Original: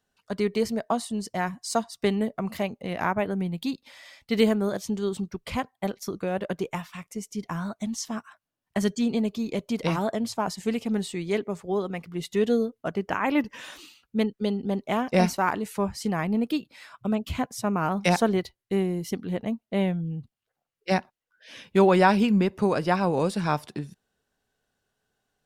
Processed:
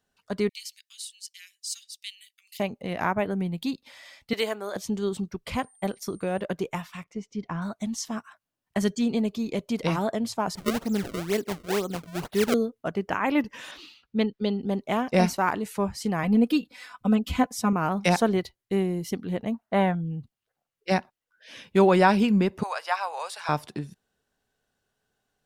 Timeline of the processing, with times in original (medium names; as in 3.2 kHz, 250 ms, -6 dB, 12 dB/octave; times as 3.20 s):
0.49–2.60 s: steep high-pass 2.6 kHz
4.33–4.76 s: high-pass 590 Hz
5.54–6.40 s: whistle 8.9 kHz -56 dBFS
7.04–7.62 s: distance through air 180 m
10.55–12.54 s: decimation with a swept rate 30×, swing 160% 2.1 Hz
13.71–14.62 s: resonant high shelf 6 kHz -10 dB, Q 1.5
16.23–17.73 s: comb 4 ms, depth 94%
19.54–19.95 s: high-order bell 1.1 kHz +12.5 dB
22.63–23.49 s: inverse Chebyshev high-pass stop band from 280 Hz, stop band 50 dB